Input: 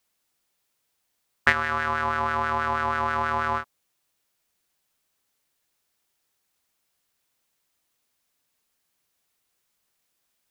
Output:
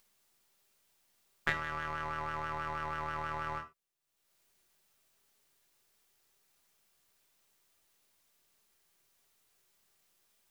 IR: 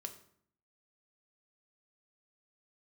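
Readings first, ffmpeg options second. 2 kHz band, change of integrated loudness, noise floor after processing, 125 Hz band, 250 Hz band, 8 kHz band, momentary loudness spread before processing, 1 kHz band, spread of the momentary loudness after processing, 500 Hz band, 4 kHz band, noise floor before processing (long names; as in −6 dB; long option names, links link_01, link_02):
−12.5 dB, −12.5 dB, −77 dBFS, −8.0 dB, −11.0 dB, can't be measured, 5 LU, −12.5 dB, 5 LU, −12.5 dB, −10.0 dB, −76 dBFS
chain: -filter_complex "[0:a]aeval=exprs='if(lt(val(0),0),0.447*val(0),val(0))':channel_layout=same,acompressor=mode=upward:threshold=-47dB:ratio=2.5[link_01];[1:a]atrim=start_sample=2205,atrim=end_sample=4410[link_02];[link_01][link_02]afir=irnorm=-1:irlink=0,volume=-7dB"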